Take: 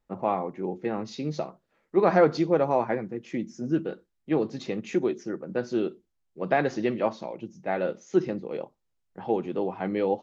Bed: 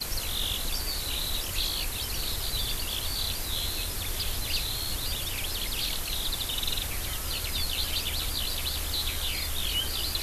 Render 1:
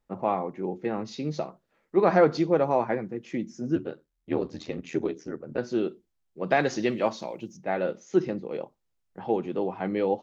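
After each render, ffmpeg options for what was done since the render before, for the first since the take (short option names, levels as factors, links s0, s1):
-filter_complex "[0:a]asettb=1/sr,asplit=3[s0][s1][s2];[s0]atrim=end=3.754[s3];[s1]atrim=start=3.75:end=5.58,asetpts=PTS-STARTPTS,afade=t=in:d=0.004:c=qsin,afade=t=out:st=1.826:d=0.004:c=qsin,aeval=exprs='val(0)*sin(2*PI*40*n/s)':c=same[s4];[s2]atrim=start=5.576[s5];[s3][s4]acrossfade=d=0.004:c1=hsin:c2=qsin[s6];[s6][s5]acrossfade=d=0.004:c1=qsin:c2=hsin,asettb=1/sr,asplit=3[s7][s8][s9];[s7]atrim=end=6.504[s10];[s8]atrim=start=6.5:end=7.57,asetpts=PTS-STARTPTS,afade=t=in:d=0.004:c=qsin,afade=t=out:st=1.066:d=0.004:c=qsin,highshelf=f=3800:g=12[s11];[s9]atrim=start=7.566[s12];[s10][s11]acrossfade=d=0.004:c1=hsin:c2=qsin[s13];[s13][s12]acrossfade=d=0.004:c1=qsin:c2=hsin"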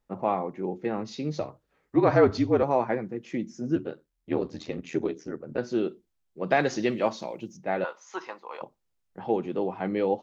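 -filter_complex "[0:a]asettb=1/sr,asplit=3[s0][s1][s2];[s0]atrim=end=1.404[s3];[s1]atrim=start=1.4:end=2.63,asetpts=PTS-STARTPTS,afade=t=in:d=0.004:c=qsin,afade=t=out:st=1.226:d=0.004:c=qsin,afreqshift=-51[s4];[s2]atrim=start=2.626[s5];[s3][s4]acrossfade=d=0.004:c1=hsin:c2=qsin[s6];[s6][s5]acrossfade=d=0.004:c1=qsin:c2=hsin,asettb=1/sr,asplit=3[s7][s8][s9];[s7]atrim=end=7.844[s10];[s8]atrim=start=7.84:end=8.62,asetpts=PTS-STARTPTS,afade=t=in:d=0.004:c=qsin,afade=t=out:st=0.776:d=0.004:c=qsin,highpass=f=1000:t=q:w=6.1[s11];[s9]atrim=start=8.616[s12];[s10][s11]acrossfade=d=0.004:c1=hsin:c2=qsin[s13];[s13][s12]acrossfade=d=0.004:c1=qsin:c2=hsin"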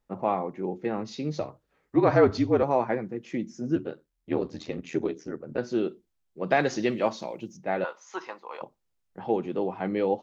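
-af anull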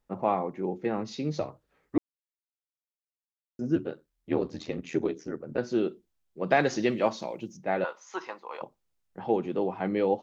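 -filter_complex "[0:a]asplit=3[s0][s1][s2];[s0]atrim=end=1.98,asetpts=PTS-STARTPTS,afade=t=out:st=1.976:d=0.004:c=hsin[s3];[s1]atrim=start=1.98:end=3.59,asetpts=PTS-STARTPTS,volume=0[s4];[s2]atrim=start=3.59,asetpts=PTS-STARTPTS,afade=t=in:d=0.004:c=hsin[s5];[s3][s4][s5]concat=n=3:v=0:a=1"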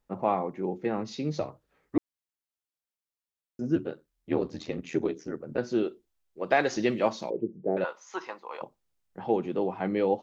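-filter_complex "[0:a]asettb=1/sr,asplit=3[s0][s1][s2];[s0]atrim=end=5.834[s3];[s1]atrim=start=5.83:end=6.77,asetpts=PTS-STARTPTS,afade=t=in:d=0.004:c=qsin,afade=t=out:st=0.936:d=0.004:c=qsin,equalizer=f=170:w=1.5:g=-10.5[s4];[s2]atrim=start=6.766[s5];[s3][s4]acrossfade=d=0.004:c1=hsin:c2=qsin[s6];[s6][s5]acrossfade=d=0.004:c1=qsin:c2=hsin,asettb=1/sr,asplit=3[s7][s8][s9];[s7]atrim=end=7.304[s10];[s8]atrim=start=7.3:end=7.77,asetpts=PTS-STARTPTS,afade=t=in:d=0.004:c=qsin,afade=t=out:st=0.466:d=0.004:c=qsin,lowpass=f=420:t=q:w=5[s11];[s9]atrim=start=7.766[s12];[s10][s11]acrossfade=d=0.004:c1=hsin:c2=qsin[s13];[s13][s12]acrossfade=d=0.004:c1=qsin:c2=hsin"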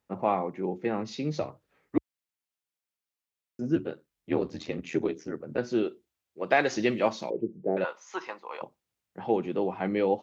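-af "highpass=f=61:w=0.5412,highpass=f=61:w=1.3066,equalizer=f=2400:w=1.5:g=3"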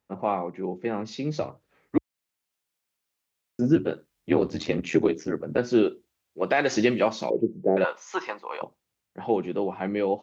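-af "dynaudnorm=f=390:g=11:m=3.76,alimiter=limit=0.335:level=0:latency=1:release=243"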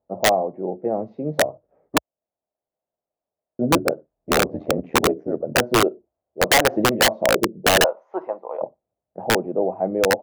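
-af "lowpass=f=640:t=q:w=4.9,aeval=exprs='(mod(2.82*val(0)+1,2)-1)/2.82':c=same"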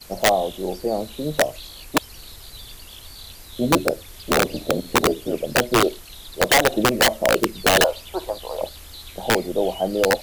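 -filter_complex "[1:a]volume=0.335[s0];[0:a][s0]amix=inputs=2:normalize=0"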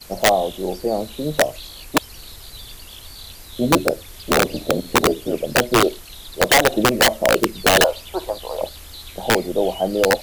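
-af "volume=1.26"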